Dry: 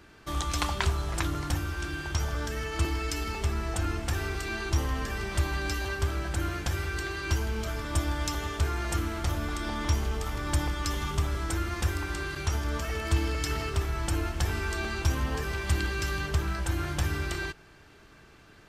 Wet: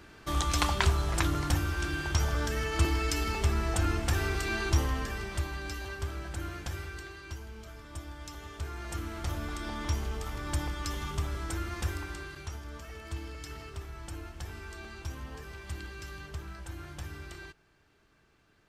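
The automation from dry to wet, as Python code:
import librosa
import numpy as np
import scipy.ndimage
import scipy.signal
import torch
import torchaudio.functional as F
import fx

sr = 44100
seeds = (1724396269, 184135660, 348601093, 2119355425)

y = fx.gain(x, sr, db=fx.line((4.69, 1.5), (5.55, -7.0), (6.76, -7.0), (7.35, -14.0), (8.17, -14.0), (9.32, -4.5), (11.93, -4.5), (12.61, -12.5)))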